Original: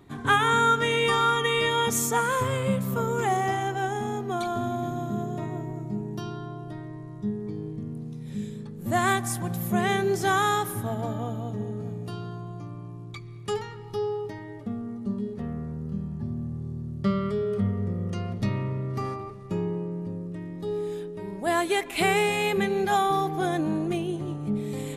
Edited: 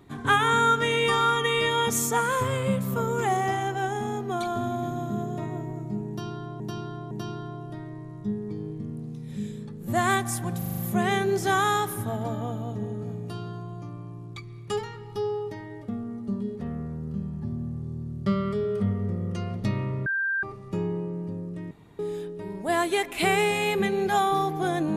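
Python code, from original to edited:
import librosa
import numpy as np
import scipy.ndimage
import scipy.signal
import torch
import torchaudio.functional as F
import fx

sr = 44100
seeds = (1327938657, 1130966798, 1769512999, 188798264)

y = fx.edit(x, sr, fx.repeat(start_s=6.09, length_s=0.51, count=3),
    fx.stutter(start_s=9.56, slice_s=0.04, count=6),
    fx.bleep(start_s=18.84, length_s=0.37, hz=1580.0, db=-23.5),
    fx.room_tone_fill(start_s=20.49, length_s=0.28), tone=tone)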